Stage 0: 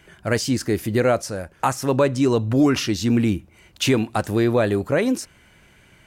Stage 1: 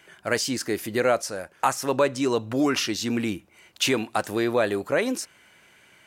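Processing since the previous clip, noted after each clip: high-pass 520 Hz 6 dB/octave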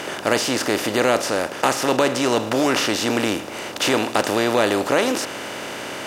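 spectral levelling over time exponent 0.4; trim -1 dB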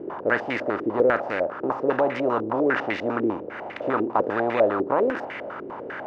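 step-sequenced low-pass 10 Hz 370–2100 Hz; trim -7.5 dB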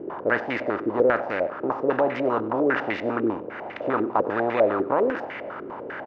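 distance through air 68 m; feedback delay 96 ms, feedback 38%, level -19.5 dB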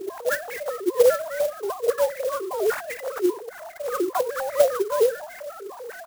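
formants replaced by sine waves; sampling jitter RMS 0.042 ms

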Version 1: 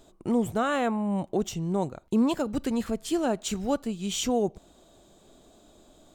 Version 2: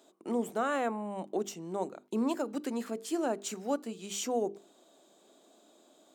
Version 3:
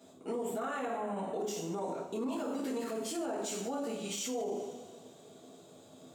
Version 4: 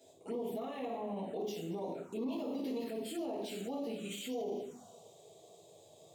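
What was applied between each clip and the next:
high-pass 240 Hz 24 dB/octave; hum notches 50/100/150/200/250/300/350/400/450 Hz; dynamic bell 3.4 kHz, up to -6 dB, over -50 dBFS, Q 2; trim -4 dB
band noise 120–490 Hz -63 dBFS; two-slope reverb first 0.56 s, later 2 s, from -18 dB, DRR -7 dB; peak limiter -25.5 dBFS, peak gain reduction 14 dB; trim -3 dB
touch-sensitive phaser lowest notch 190 Hz, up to 1.5 kHz, full sweep at -32.5 dBFS; trim -1 dB

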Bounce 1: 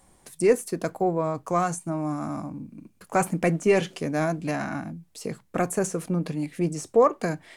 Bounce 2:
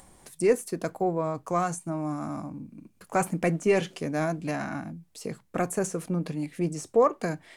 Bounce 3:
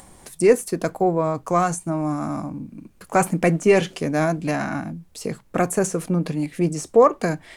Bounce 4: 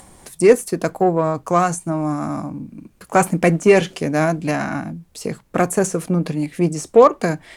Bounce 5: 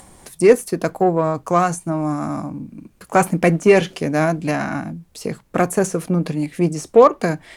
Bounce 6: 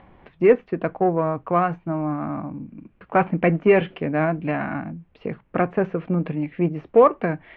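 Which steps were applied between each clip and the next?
upward compressor, threshold -44 dBFS; trim -2.5 dB
added noise brown -65 dBFS; trim +7 dB
Chebyshev shaper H 7 -33 dB, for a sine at -4.5 dBFS; trim +3.5 dB
dynamic bell 7.8 kHz, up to -4 dB, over -45 dBFS, Q 2.4
steep low-pass 2.9 kHz 36 dB/octave; trim -3.5 dB

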